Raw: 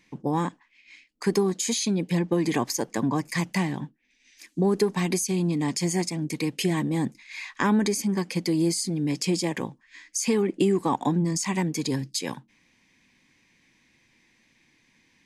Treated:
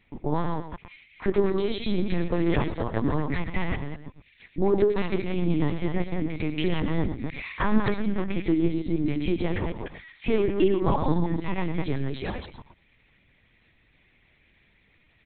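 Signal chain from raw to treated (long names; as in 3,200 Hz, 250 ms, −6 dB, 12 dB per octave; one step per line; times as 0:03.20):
delay that plays each chunk backwards 152 ms, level −4 dB
single-tap delay 111 ms −10 dB
linear-prediction vocoder at 8 kHz pitch kept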